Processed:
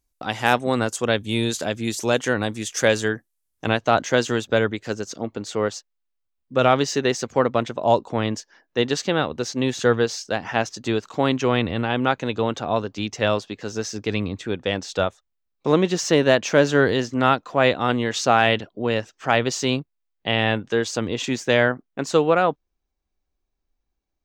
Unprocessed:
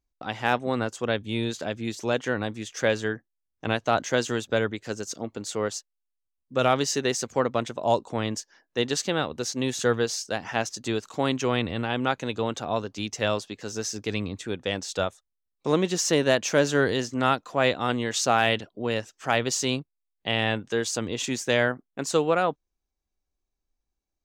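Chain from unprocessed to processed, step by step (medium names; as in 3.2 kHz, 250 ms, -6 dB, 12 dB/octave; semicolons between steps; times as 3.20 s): peaking EQ 11 kHz +11 dB 1.3 oct, from 3.69 s -5.5 dB, from 4.93 s -13 dB; trim +5 dB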